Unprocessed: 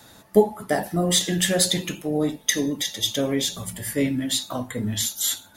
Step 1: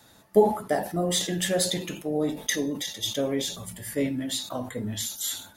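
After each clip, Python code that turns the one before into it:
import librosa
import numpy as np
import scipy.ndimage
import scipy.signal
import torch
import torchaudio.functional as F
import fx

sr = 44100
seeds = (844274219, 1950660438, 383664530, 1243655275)

y = fx.dynamic_eq(x, sr, hz=550.0, q=0.84, threshold_db=-37.0, ratio=4.0, max_db=5)
y = fx.sustainer(y, sr, db_per_s=110.0)
y = y * librosa.db_to_amplitude(-6.5)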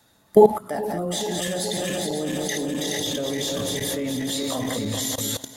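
y = fx.reverse_delay_fb(x, sr, ms=211, feedback_pct=82, wet_db=-7)
y = fx.level_steps(y, sr, step_db=17)
y = y * librosa.db_to_amplitude(7.5)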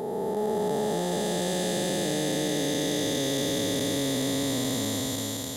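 y = fx.spec_blur(x, sr, span_ms=1070.0)
y = y * librosa.db_to_amplitude(1.5)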